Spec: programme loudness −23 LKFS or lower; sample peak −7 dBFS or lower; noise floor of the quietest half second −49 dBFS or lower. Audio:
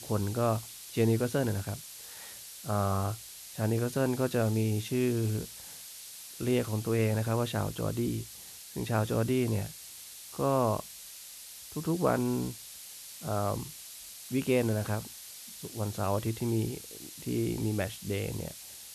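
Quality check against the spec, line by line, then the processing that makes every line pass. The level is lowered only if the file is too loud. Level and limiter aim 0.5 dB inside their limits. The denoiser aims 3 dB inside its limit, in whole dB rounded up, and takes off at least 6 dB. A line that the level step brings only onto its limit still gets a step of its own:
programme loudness −31.5 LKFS: in spec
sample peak −13.5 dBFS: in spec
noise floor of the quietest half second −47 dBFS: out of spec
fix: broadband denoise 6 dB, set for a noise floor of −47 dBFS

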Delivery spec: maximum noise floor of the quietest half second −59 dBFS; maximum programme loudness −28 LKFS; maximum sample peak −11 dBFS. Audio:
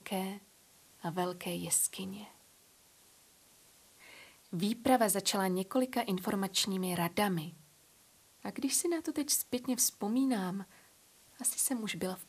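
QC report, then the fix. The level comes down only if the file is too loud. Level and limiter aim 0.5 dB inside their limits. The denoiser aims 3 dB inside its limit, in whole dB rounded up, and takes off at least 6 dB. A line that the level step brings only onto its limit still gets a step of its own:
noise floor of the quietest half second −64 dBFS: in spec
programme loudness −33.0 LKFS: in spec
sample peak −13.5 dBFS: in spec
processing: no processing needed

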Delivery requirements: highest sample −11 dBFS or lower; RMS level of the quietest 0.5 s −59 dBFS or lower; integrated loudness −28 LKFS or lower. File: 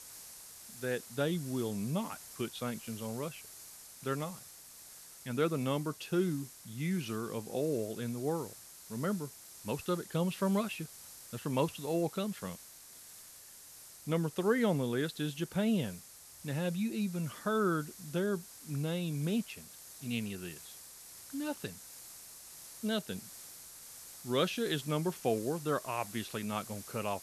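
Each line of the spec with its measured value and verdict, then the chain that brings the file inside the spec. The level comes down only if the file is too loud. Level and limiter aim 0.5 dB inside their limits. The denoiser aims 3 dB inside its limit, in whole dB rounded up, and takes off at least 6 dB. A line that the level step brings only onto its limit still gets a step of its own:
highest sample −16.5 dBFS: in spec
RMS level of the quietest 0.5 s −53 dBFS: out of spec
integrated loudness −35.5 LKFS: in spec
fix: broadband denoise 9 dB, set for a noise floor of −53 dBFS

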